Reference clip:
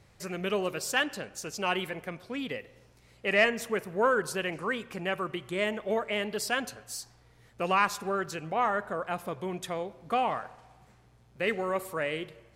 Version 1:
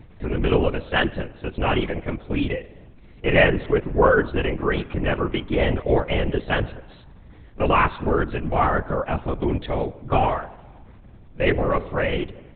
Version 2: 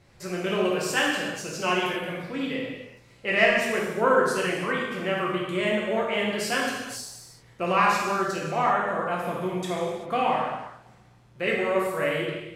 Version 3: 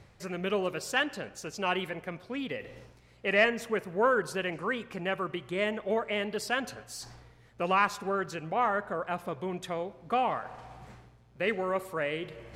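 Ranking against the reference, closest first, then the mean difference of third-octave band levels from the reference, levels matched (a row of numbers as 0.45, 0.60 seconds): 3, 2, 1; 2.0, 6.5, 9.0 decibels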